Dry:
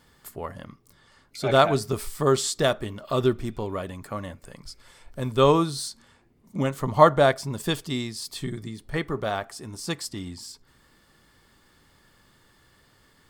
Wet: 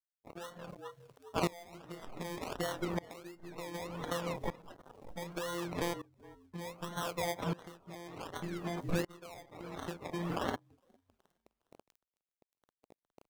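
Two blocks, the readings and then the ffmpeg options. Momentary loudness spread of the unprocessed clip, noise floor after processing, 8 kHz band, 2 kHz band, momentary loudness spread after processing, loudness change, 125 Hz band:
20 LU, under -85 dBFS, -14.0 dB, -11.5 dB, 14 LU, -15.0 dB, -13.5 dB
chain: -filter_complex "[0:a]afftfilt=real='hypot(re,im)*cos(PI*b)':imag='0':win_size=1024:overlap=0.75,asplit=2[a][b];[b]adelay=31,volume=-5dB[c];[a][c]amix=inputs=2:normalize=0,acrossover=split=230[d][e];[e]acrusher=samples=25:mix=1:aa=0.000001:lfo=1:lforange=15:lforate=1.4[f];[d][f]amix=inputs=2:normalize=0,highshelf=f=3.9k:g=2,acrusher=bits=7:mix=0:aa=0.000001,aeval=exprs='0.299*(abs(mod(val(0)/0.299+3,4)-2)-1)':c=same,alimiter=limit=-20.5dB:level=0:latency=1:release=401,lowshelf=f=160:g=-8,asplit=2[g][h];[h]asplit=3[i][j][k];[i]adelay=411,afreqshift=-40,volume=-17dB[l];[j]adelay=822,afreqshift=-80,volume=-27.2dB[m];[k]adelay=1233,afreqshift=-120,volume=-37.3dB[n];[l][m][n]amix=inputs=3:normalize=0[o];[g][o]amix=inputs=2:normalize=0,afftdn=nr=15:nf=-51,acompressor=threshold=-44dB:ratio=12,aeval=exprs='val(0)*pow(10,-22*if(lt(mod(-0.66*n/s,1),2*abs(-0.66)/1000),1-mod(-0.66*n/s,1)/(2*abs(-0.66)/1000),(mod(-0.66*n/s,1)-2*abs(-0.66)/1000)/(1-2*abs(-0.66)/1000))/20)':c=same,volume=16.5dB"

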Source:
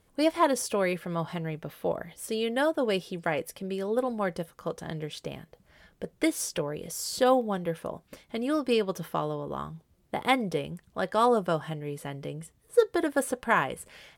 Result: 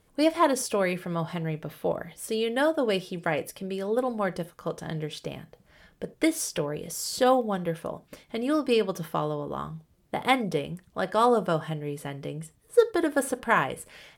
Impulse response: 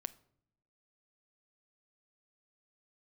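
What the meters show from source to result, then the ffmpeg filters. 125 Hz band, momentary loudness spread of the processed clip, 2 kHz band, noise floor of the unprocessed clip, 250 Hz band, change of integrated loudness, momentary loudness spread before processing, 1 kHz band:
+2.5 dB, 14 LU, +1.5 dB, -66 dBFS, +2.0 dB, +1.5 dB, 14 LU, +1.5 dB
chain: -filter_complex "[1:a]atrim=start_sample=2205,afade=t=out:st=0.14:d=0.01,atrim=end_sample=6615[a];[0:a][a]afir=irnorm=-1:irlink=0,volume=4dB"

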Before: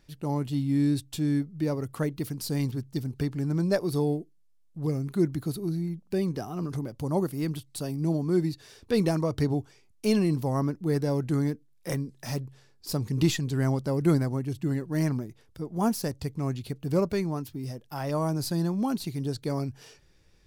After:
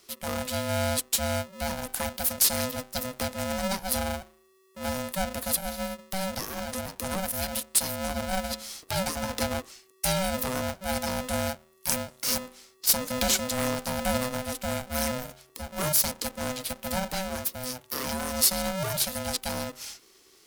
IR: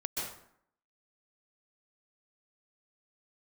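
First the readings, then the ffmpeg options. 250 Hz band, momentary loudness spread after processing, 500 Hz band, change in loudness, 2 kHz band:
-7.0 dB, 10 LU, -1.5 dB, +0.5 dB, +8.0 dB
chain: -filter_complex "[0:a]acrossover=split=280[a][b];[b]acompressor=threshold=-31dB:ratio=6[c];[a][c]amix=inputs=2:normalize=0,crystalizer=i=8:c=0,bandreject=f=81.41:t=h:w=4,bandreject=f=162.82:t=h:w=4,bandreject=f=244.23:t=h:w=4,bandreject=f=325.64:t=h:w=4,bandreject=f=407.05:t=h:w=4,bandreject=f=488.46:t=h:w=4,bandreject=f=569.87:t=h:w=4,bandreject=f=651.28:t=h:w=4,bandreject=f=732.69:t=h:w=4,bandreject=f=814.1:t=h:w=4,bandreject=f=895.51:t=h:w=4,bandreject=f=976.92:t=h:w=4,bandreject=f=1.05833k:t=h:w=4,bandreject=f=1.13974k:t=h:w=4,bandreject=f=1.22115k:t=h:w=4,aeval=exprs='val(0)*sgn(sin(2*PI*380*n/s))':c=same,volume=-3dB"

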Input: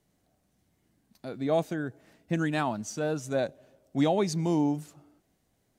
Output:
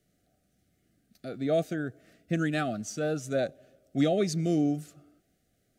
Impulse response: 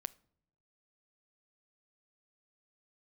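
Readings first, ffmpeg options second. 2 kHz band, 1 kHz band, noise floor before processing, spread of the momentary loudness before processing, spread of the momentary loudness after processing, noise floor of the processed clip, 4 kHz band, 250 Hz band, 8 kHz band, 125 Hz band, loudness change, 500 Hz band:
0.0 dB, -4.5 dB, -73 dBFS, 10 LU, 10 LU, -73 dBFS, 0.0 dB, 0.0 dB, 0.0 dB, 0.0 dB, 0.0 dB, 0.0 dB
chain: -af "asuperstop=centerf=950:order=20:qfactor=2.4"

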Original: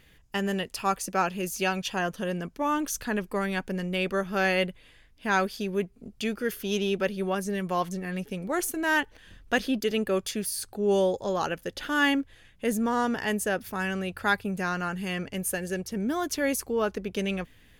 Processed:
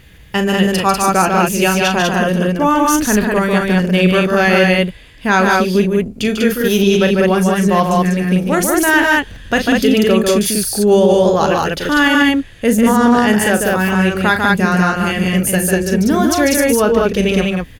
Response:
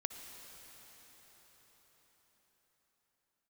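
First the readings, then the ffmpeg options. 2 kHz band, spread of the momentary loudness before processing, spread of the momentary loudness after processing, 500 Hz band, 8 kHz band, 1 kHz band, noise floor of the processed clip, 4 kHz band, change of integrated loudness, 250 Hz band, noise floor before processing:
+14.0 dB, 7 LU, 5 LU, +15.0 dB, +14.5 dB, +14.5 dB, -37 dBFS, +14.0 dB, +15.0 dB, +16.5 dB, -57 dBFS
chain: -filter_complex "[0:a]equalizer=f=76:w=0.48:g=6.5,asplit=2[a][b];[b]aecho=0:1:37.9|145.8|195.3:0.355|0.562|0.794[c];[a][c]amix=inputs=2:normalize=0,alimiter=level_in=12.5dB:limit=-1dB:release=50:level=0:latency=1,volume=-1dB"

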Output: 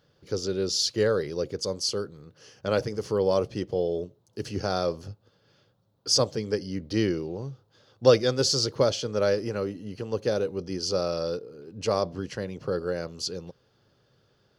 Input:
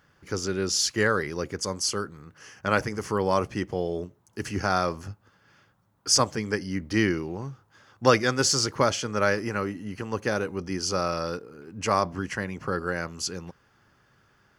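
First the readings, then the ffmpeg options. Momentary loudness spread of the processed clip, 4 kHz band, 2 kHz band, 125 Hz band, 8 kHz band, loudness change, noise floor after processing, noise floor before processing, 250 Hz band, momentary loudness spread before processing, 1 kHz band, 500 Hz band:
13 LU, +0.5 dB, -10.0 dB, -1.0 dB, -5.0 dB, -0.5 dB, -67 dBFS, -64 dBFS, -2.0 dB, 13 LU, -7.5 dB, +2.5 dB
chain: -af "equalizer=f=125:t=o:w=1:g=6,equalizer=f=500:t=o:w=1:g=11,equalizer=f=1k:t=o:w=1:g=-4,equalizer=f=2k:t=o:w=1:g=-7,equalizer=f=4k:t=o:w=1:g=12,equalizer=f=8k:t=o:w=1:g=-4,volume=-6dB"

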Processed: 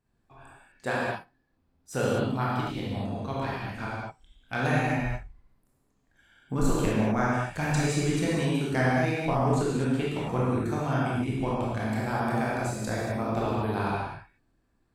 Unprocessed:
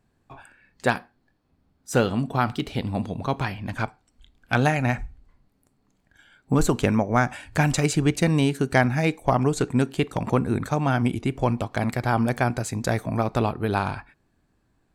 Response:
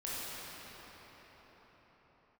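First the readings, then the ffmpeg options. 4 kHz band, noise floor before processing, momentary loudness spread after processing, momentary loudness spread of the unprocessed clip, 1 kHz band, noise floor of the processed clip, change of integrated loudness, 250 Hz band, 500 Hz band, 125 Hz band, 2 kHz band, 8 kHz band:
-4.5 dB, -69 dBFS, 9 LU, 8 LU, -4.0 dB, -71 dBFS, -4.0 dB, -4.0 dB, -3.5 dB, -4.5 dB, -4.0 dB, -5.5 dB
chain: -filter_complex "[1:a]atrim=start_sample=2205,afade=t=out:st=0.31:d=0.01,atrim=end_sample=14112[a];[0:a][a]afir=irnorm=-1:irlink=0,volume=-5.5dB"

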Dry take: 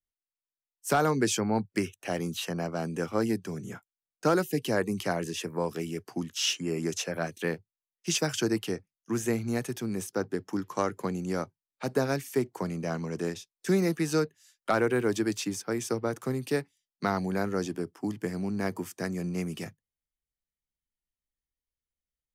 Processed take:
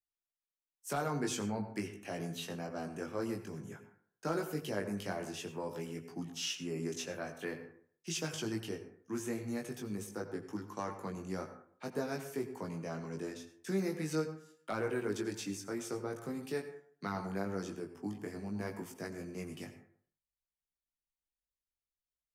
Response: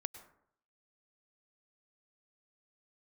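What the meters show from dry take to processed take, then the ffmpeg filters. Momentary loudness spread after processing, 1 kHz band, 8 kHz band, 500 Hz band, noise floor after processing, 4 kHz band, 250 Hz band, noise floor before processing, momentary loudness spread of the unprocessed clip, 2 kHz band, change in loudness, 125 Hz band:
8 LU, -9.5 dB, -9.0 dB, -9.0 dB, under -85 dBFS, -9.0 dB, -9.0 dB, under -85 dBFS, 9 LU, -9.5 dB, -9.0 dB, -9.0 dB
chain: -filter_complex "[0:a]asplit=2[a][b];[b]alimiter=limit=-21dB:level=0:latency=1,volume=-2dB[c];[a][c]amix=inputs=2:normalize=0,flanger=delay=18.5:depth=2.2:speed=0.48[d];[1:a]atrim=start_sample=2205,asetrate=52920,aresample=44100[e];[d][e]afir=irnorm=-1:irlink=0,volume=-6.5dB"

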